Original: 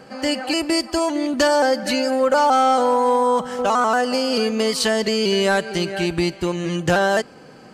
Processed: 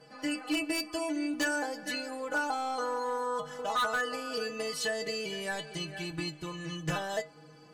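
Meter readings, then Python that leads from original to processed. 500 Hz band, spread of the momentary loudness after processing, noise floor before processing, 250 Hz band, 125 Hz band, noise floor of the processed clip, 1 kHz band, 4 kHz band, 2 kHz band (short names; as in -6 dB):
-16.5 dB, 7 LU, -44 dBFS, -14.0 dB, -13.0 dB, -54 dBFS, -15.5 dB, -12.5 dB, -9.5 dB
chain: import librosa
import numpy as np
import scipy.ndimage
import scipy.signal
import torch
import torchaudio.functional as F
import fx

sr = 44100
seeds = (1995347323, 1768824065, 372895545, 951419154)

y = fx.stiff_resonator(x, sr, f0_hz=150.0, decay_s=0.28, stiffness=0.008)
y = 10.0 ** (-22.5 / 20.0) * (np.abs((y / 10.0 ** (-22.5 / 20.0) + 3.0) % 4.0 - 2.0) - 1.0)
y = fx.dynamic_eq(y, sr, hz=4700.0, q=3.2, threshold_db=-48.0, ratio=4.0, max_db=-5)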